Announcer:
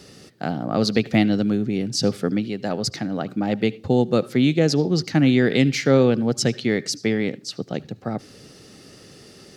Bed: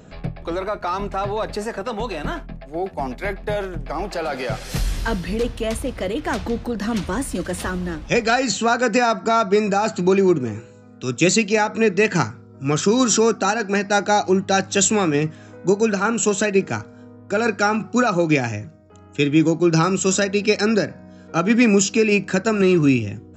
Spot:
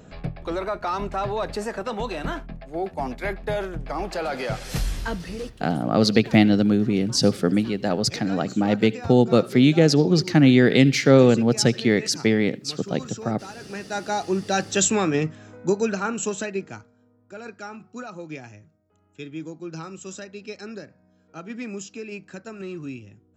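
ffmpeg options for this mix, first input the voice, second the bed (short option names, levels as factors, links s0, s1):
-filter_complex "[0:a]adelay=5200,volume=1.26[s0];[1:a]volume=5.62,afade=t=out:st=4.78:d=0.89:silence=0.125893,afade=t=in:st=13.54:d=1.28:silence=0.133352,afade=t=out:st=15.49:d=1.5:silence=0.16788[s1];[s0][s1]amix=inputs=2:normalize=0"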